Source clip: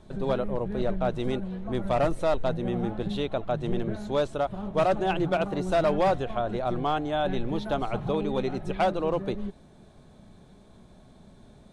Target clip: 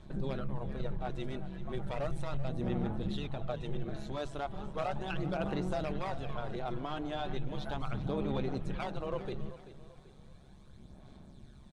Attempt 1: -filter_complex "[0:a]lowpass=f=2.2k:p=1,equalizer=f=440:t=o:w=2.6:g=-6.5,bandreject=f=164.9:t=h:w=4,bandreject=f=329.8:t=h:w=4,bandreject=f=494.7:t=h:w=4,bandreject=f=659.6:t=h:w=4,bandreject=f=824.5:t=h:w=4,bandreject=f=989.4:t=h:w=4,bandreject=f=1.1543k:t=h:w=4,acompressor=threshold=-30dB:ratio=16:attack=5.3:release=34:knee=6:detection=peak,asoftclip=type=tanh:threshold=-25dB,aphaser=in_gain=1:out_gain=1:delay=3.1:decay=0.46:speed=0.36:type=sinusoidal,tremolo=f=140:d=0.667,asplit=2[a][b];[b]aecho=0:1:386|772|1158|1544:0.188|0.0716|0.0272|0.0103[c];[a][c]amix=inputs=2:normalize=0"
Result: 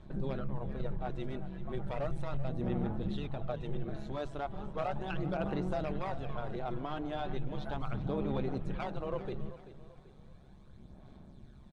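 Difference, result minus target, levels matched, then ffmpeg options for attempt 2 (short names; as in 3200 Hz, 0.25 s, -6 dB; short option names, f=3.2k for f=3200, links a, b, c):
8000 Hz band -7.0 dB
-filter_complex "[0:a]lowpass=f=7.2k:p=1,equalizer=f=440:t=o:w=2.6:g=-6.5,bandreject=f=164.9:t=h:w=4,bandreject=f=329.8:t=h:w=4,bandreject=f=494.7:t=h:w=4,bandreject=f=659.6:t=h:w=4,bandreject=f=824.5:t=h:w=4,bandreject=f=989.4:t=h:w=4,bandreject=f=1.1543k:t=h:w=4,acompressor=threshold=-30dB:ratio=16:attack=5.3:release=34:knee=6:detection=peak,asoftclip=type=tanh:threshold=-25dB,aphaser=in_gain=1:out_gain=1:delay=3.1:decay=0.46:speed=0.36:type=sinusoidal,tremolo=f=140:d=0.667,asplit=2[a][b];[b]aecho=0:1:386|772|1158|1544:0.188|0.0716|0.0272|0.0103[c];[a][c]amix=inputs=2:normalize=0"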